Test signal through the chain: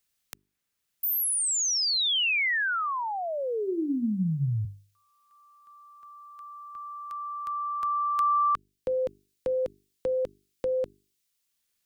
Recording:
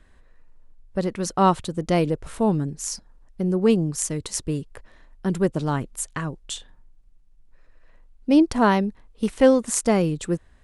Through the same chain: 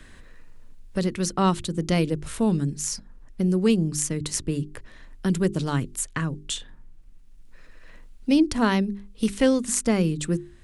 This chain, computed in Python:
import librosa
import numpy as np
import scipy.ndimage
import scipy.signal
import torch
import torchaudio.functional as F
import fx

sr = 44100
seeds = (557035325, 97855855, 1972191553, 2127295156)

y = fx.peak_eq(x, sr, hz=740.0, db=-9.5, octaves=1.8)
y = fx.hum_notches(y, sr, base_hz=50, count=8)
y = fx.band_squash(y, sr, depth_pct=40)
y = y * 10.0 ** (2.5 / 20.0)